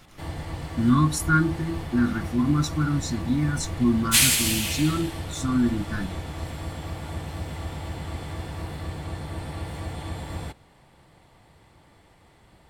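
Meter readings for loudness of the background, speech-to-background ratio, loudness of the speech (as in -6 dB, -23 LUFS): -29.5 LUFS, 4.5 dB, -25.0 LUFS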